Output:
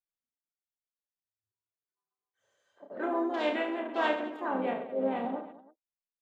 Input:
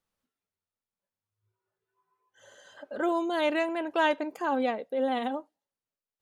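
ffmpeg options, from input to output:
-filter_complex "[0:a]afwtdn=0.01,asplit=4[s0][s1][s2][s3];[s1]asetrate=33038,aresample=44100,atempo=1.33484,volume=0.282[s4];[s2]asetrate=37084,aresample=44100,atempo=1.18921,volume=0.178[s5];[s3]asetrate=52444,aresample=44100,atempo=0.840896,volume=0.251[s6];[s0][s4][s5][s6]amix=inputs=4:normalize=0,aecho=1:1:30|72|130.8|213.1|328.4:0.631|0.398|0.251|0.158|0.1,volume=0.501"

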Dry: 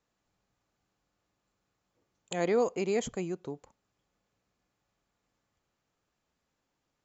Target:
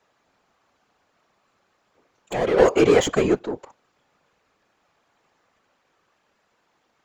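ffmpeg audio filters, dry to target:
-filter_complex "[0:a]asplit=2[s0][s1];[s1]highpass=f=720:p=1,volume=14.1,asoftclip=type=tanh:threshold=0.141[s2];[s0][s2]amix=inputs=2:normalize=0,lowpass=f=1900:p=1,volume=0.501,asettb=1/sr,asplit=3[s3][s4][s5];[s3]atrim=end=2.584[s6];[s4]atrim=start=2.58:end=3.39,asetpts=PTS-STARTPTS,afade=t=in:d=0.004:c=qsin,afade=t=out:st=0.806:d=0.004:c=qsin,acontrast=82[s7];[s5]atrim=start=3.386[s8];[s6][s7]acrossfade=d=0.004:c1=hsin:c2=qsin[s9];[s9][s8]acrossfade=d=0.004:c1=qsin:c2=hsin,afftfilt=real='hypot(re,im)*cos(2*PI*random(0))':imag='hypot(re,im)*sin(2*PI*random(1))':win_size=512:overlap=0.75,volume=2.51"

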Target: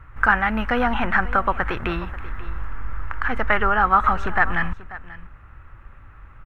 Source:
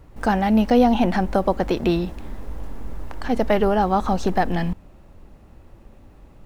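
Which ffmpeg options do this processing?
-filter_complex "[0:a]firequalizer=gain_entry='entry(120,0);entry(180,-13);entry(670,-10);entry(1300,12);entry(4500,-18);entry(6900,-16)':delay=0.05:min_phase=1,asplit=2[s0][s1];[s1]aecho=0:1:537:0.133[s2];[s0][s2]amix=inputs=2:normalize=0,volume=1.5"

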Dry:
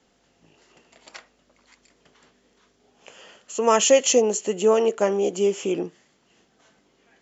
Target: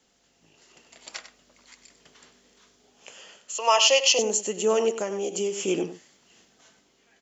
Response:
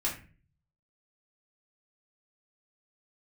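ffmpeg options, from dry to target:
-filter_complex "[0:a]aecho=1:1:97:0.251,asettb=1/sr,asplit=3[s0][s1][s2];[s0]atrim=end=4.944[s3];[s1]atrim=start=4.94:end=5.68,asetpts=PTS-STARTPTS,afade=t=in:d=0.004:c=qsin,afade=t=out:st=0.736:d=0.004:c=qsin,acompressor=threshold=0.0501:ratio=2.5[s4];[s2]atrim=start=5.676[s5];[s3][s4]acrossfade=d=0.004:c1=hsin:c2=qsin[s6];[s6][s5]acrossfade=d=0.004:c1=qsin:c2=hsin,highshelf=f=3000:g=10,dynaudnorm=f=140:g=11:m=1.78,asettb=1/sr,asplit=3[s7][s8][s9];[s7]atrim=end=3.584[s10];[s8]atrim=start=3.58:end=4.19,asetpts=PTS-STARTPTS,afade=t=in:d=0.004:c=qsin,afade=t=out:st=0.606:d=0.004:c=qsin,highpass=f=420:w=0.5412,highpass=f=420:w=1.3066,equalizer=f=430:t=q:w=4:g=-7,equalizer=f=660:t=q:w=4:g=4,equalizer=f=1000:t=q:w=4:g=9,equalizer=f=1600:t=q:w=4:g=-6,equalizer=f=2800:t=q:w=4:g=10,equalizer=f=4900:t=q:w=4:g=9,lowpass=f=5700:w=0.5412,lowpass=f=5700:w=1.3066[s11];[s9]atrim=start=4.186[s12];[s10][s11]acrossfade=d=0.004:c1=hsin:c2=qsin[s13];[s13][s12]acrossfade=d=0.004:c1=qsin:c2=hsin,volume=0.531"

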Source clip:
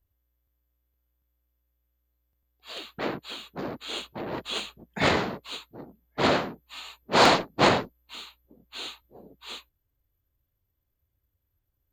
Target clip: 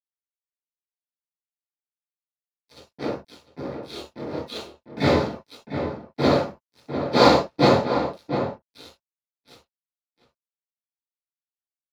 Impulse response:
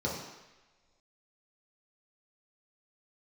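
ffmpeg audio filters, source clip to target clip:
-filter_complex "[0:a]aeval=exprs='sgn(val(0))*max(abs(val(0))-0.0168,0)':c=same,asettb=1/sr,asplit=3[s0][s1][s2];[s0]atrim=end=3.864[s3];[s1]atrim=start=3.86:end=4.57,asetpts=PTS-STARTPTS,afade=t=in:d=0.004:c=qsin,afade=t=out:st=0.706:d=0.004:c=qsin,asplit=2[s4][s5];[s5]adelay=27,volume=0.794[s6];[s4][s6]amix=inputs=2:normalize=0,atrim=end_sample=31311[s7];[s2]atrim=start=4.566[s8];[s3][s7]acrossfade=d=0.004:c1=hsin:c2=qsin[s9];[s9][s8]acrossfade=d=0.004:c1=qsin:c2=hsin,asplit=2[s10][s11];[s11]adelay=699.7,volume=0.398,highshelf=f=4000:g=-15.7[s12];[s10][s12]amix=inputs=2:normalize=0[s13];[1:a]atrim=start_sample=2205,atrim=end_sample=3087[s14];[s13][s14]afir=irnorm=-1:irlink=0,volume=0.631"

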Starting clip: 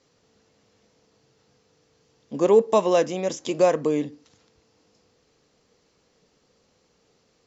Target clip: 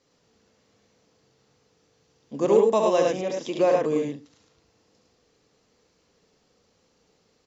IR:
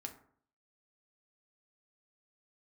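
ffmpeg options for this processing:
-filter_complex "[0:a]asettb=1/sr,asplit=3[s0][s1][s2];[s0]atrim=end=3.114[s3];[s1]atrim=start=3.11:end=3.85,asetpts=PTS-STARTPTS,afade=t=in:d=0.004:c=qsin,afade=t=out:st=0.736:d=0.004:c=qsin,highpass=140,lowpass=4800[s4];[s2]atrim=start=3.846[s5];[s3][s4]acrossfade=d=0.004:c1=hsin:c2=qsin[s6];[s6][s5]acrossfade=d=0.004:c1=qsin:c2=hsin,aecho=1:1:69.97|105:0.562|0.708,volume=0.668"

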